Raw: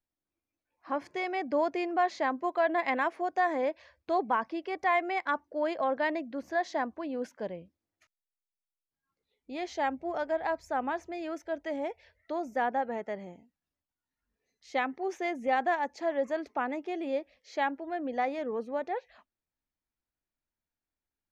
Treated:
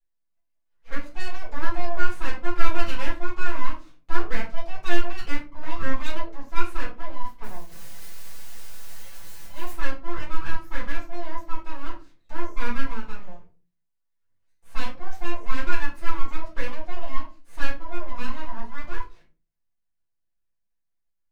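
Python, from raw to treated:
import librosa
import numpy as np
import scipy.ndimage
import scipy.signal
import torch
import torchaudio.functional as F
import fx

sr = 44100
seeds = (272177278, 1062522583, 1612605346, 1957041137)

y = fx.crossing_spikes(x, sr, level_db=-34.0, at=(7.43, 9.72))
y = y + 0.9 * np.pad(y, (int(5.9 * sr / 1000.0), 0))[:len(y)]
y = np.abs(y)
y = fx.room_shoebox(y, sr, seeds[0], volume_m3=150.0, walls='furnished', distance_m=4.1)
y = y * librosa.db_to_amplitude(-10.0)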